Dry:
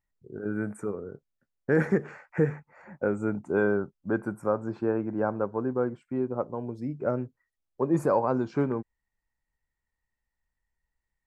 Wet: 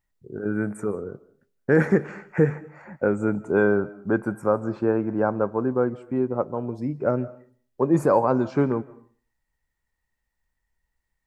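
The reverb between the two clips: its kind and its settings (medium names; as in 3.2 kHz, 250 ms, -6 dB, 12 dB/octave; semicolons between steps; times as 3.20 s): algorithmic reverb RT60 0.44 s, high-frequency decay 0.7×, pre-delay 120 ms, DRR 19 dB; trim +5 dB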